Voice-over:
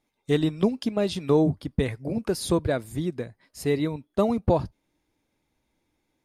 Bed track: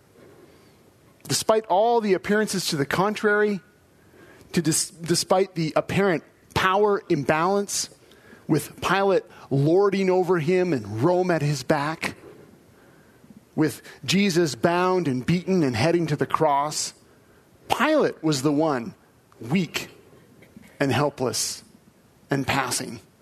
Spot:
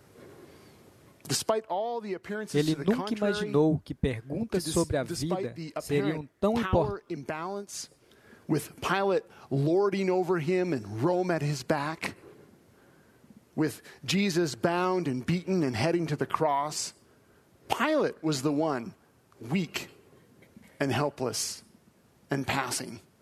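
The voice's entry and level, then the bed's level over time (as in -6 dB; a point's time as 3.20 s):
2.25 s, -3.5 dB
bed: 1.00 s -0.5 dB
1.97 s -13.5 dB
7.71 s -13.5 dB
8.20 s -6 dB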